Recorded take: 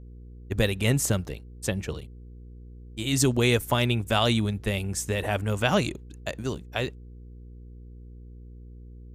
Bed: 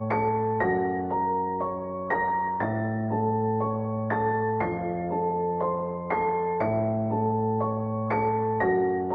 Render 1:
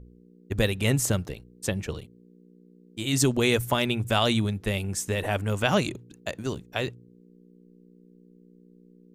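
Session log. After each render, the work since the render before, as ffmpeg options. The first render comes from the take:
-af "bandreject=f=60:t=h:w=4,bandreject=f=120:t=h:w=4"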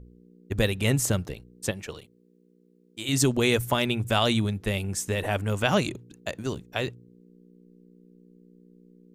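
-filter_complex "[0:a]asettb=1/sr,asplit=3[a][b][c];[a]atrim=end=1.714[d];[b]atrim=start=1.71:end=3.09,asetpts=PTS-STARTPTS,afade=t=in:d=0.004:c=qsin,afade=t=out:st=1.376:d=0.004:c=qsin,lowshelf=f=310:g=-11.5[e];[c]atrim=start=3.086[f];[d][e]acrossfade=d=0.004:c1=hsin:c2=qsin[g];[g][f]acrossfade=d=0.004:c1=qsin:c2=hsin"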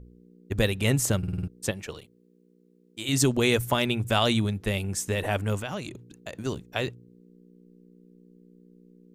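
-filter_complex "[0:a]asettb=1/sr,asplit=3[a][b][c];[a]atrim=end=5.604[d];[b]atrim=start=5.6:end=6.33,asetpts=PTS-STARTPTS,afade=t=in:d=0.004:c=qsin,afade=t=out:st=0.726:d=0.004:c=qsin,acompressor=threshold=-38dB:ratio=2:attack=3.2:release=140:knee=1:detection=peak[e];[c]atrim=start=6.326[f];[d][e]acrossfade=d=0.004:c1=hsin:c2=qsin[g];[g][f]acrossfade=d=0.004:c1=qsin:c2=hsin,asplit=7[h][i][j][k][l][m][n];[h]atrim=end=1.232[o];[i]atrim=start=1.178:end=1.232[p];[j]atrim=start=1.178:end=1.232[q];[k]atrim=start=1.178:end=1.232[r];[l]atrim=start=1.178:end=1.232[s];[m]atrim=start=1.178:end=1.232[t];[n]atrim=start=1.478[u];[o][p]acrossfade=d=0.004:c1=hsin:c2=hsin[v];[v][q]acrossfade=d=0.004:c1=hsin:c2=hsin[w];[w][r]acrossfade=d=0.004:c1=hsin:c2=hsin[x];[x][s]acrossfade=d=0.004:c1=hsin:c2=hsin[y];[y][t]acrossfade=d=0.004:c1=hsin:c2=hsin[z];[z][u]acrossfade=d=0.004:c1=hsin:c2=hsin"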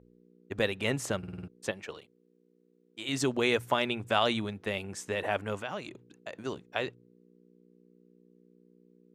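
-af "highpass=f=550:p=1,aemphasis=mode=reproduction:type=75fm"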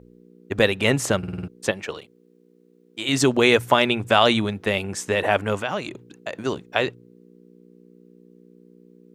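-af "volume=10.5dB,alimiter=limit=-2dB:level=0:latency=1"

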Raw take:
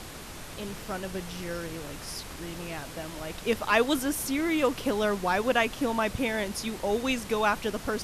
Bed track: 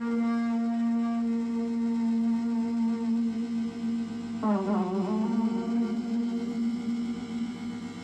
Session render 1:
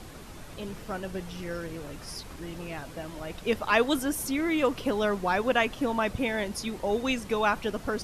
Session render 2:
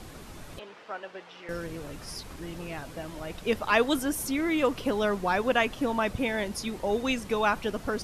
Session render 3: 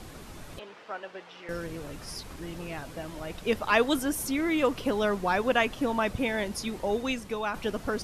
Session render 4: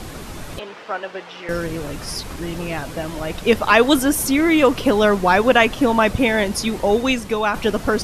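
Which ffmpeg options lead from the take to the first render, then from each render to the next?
-af "afftdn=nr=7:nf=-42"
-filter_complex "[0:a]asettb=1/sr,asplit=3[a][b][c];[a]atrim=end=0.594[d];[b]atrim=start=0.59:end=1.49,asetpts=PTS-STARTPTS,afade=t=in:d=0.004:c=qsin,afade=t=out:st=0.896:d=0.004:c=qsin,highpass=570,lowpass=3.3k[e];[c]atrim=start=1.486[f];[d][e]acrossfade=d=0.004:c1=hsin:c2=qsin[g];[g][f]acrossfade=d=0.004:c1=qsin:c2=hsin"
-filter_complex "[0:a]asplit=2[a][b];[a]atrim=end=7.54,asetpts=PTS-STARTPTS,afade=t=out:st=6.81:d=0.73:silence=0.421697[c];[b]atrim=start=7.54,asetpts=PTS-STARTPTS,afade=t=in:d=0.004:c=hsin:silence=0.421697[d];[c][d]concat=n=2:v=0:a=1"
-af "volume=11.5dB,alimiter=limit=-2dB:level=0:latency=1"

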